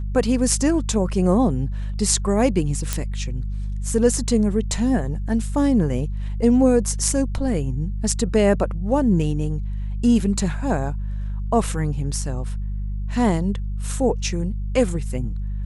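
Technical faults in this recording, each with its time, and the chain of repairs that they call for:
hum 50 Hz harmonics 4 -26 dBFS
2.93 s: pop -7 dBFS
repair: de-click; de-hum 50 Hz, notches 4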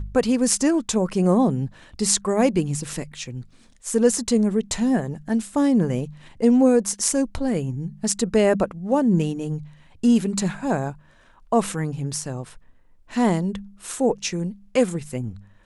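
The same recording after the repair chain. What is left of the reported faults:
2.93 s: pop

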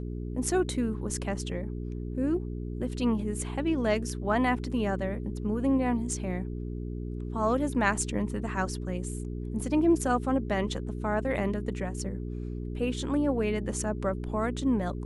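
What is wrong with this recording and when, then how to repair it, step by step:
hum 60 Hz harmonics 7 -35 dBFS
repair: de-hum 60 Hz, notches 7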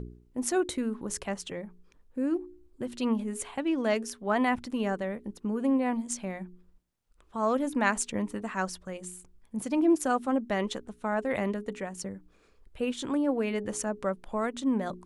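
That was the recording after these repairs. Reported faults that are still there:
nothing left

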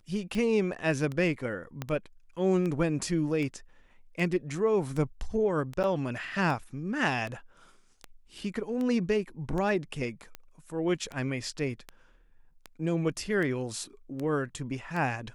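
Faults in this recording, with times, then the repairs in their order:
tick 78 rpm -23 dBFS
1.82 s: pop -19 dBFS
5.83–5.84 s: dropout 8.5 ms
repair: de-click; interpolate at 5.83 s, 8.5 ms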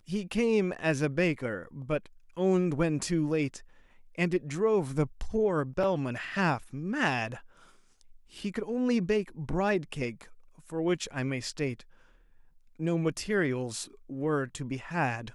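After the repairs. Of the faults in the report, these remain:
1.82 s: pop

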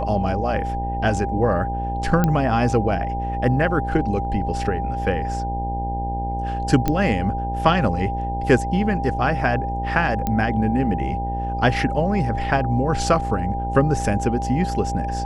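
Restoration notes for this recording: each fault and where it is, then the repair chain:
buzz 60 Hz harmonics 16 -27 dBFS
whine 800 Hz -26 dBFS
2.24 s: pop -7 dBFS
6.88 s: pop -7 dBFS
10.27 s: pop -10 dBFS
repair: de-click; de-hum 60 Hz, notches 16; band-stop 800 Hz, Q 30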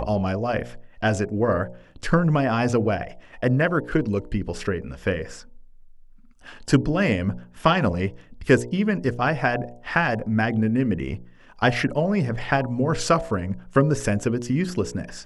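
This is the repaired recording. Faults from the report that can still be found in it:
nothing left

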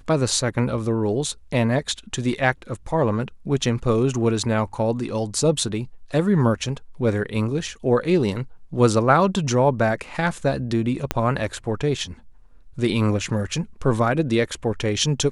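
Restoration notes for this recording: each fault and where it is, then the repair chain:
11.11 s: pop -6 dBFS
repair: de-click

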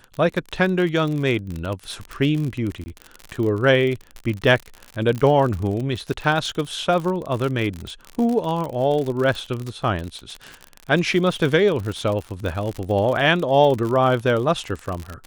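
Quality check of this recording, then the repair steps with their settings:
crackle 53 per s -25 dBFS
2.84–2.86 s: dropout 20 ms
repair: de-click; interpolate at 2.84 s, 20 ms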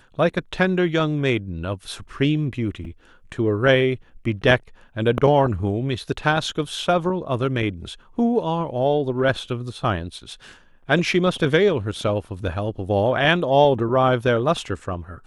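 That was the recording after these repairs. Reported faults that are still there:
nothing left

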